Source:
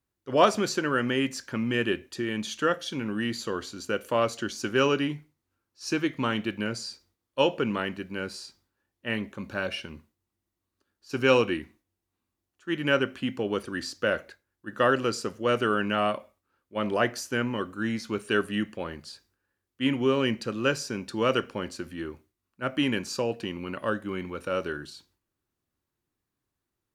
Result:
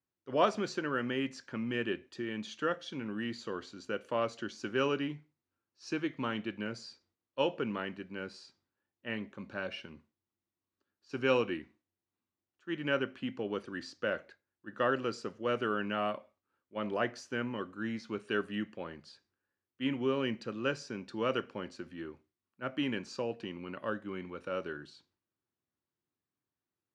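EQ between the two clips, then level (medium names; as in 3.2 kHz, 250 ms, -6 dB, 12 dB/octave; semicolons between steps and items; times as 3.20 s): high-pass 110 Hz; distance through air 100 m; -7.0 dB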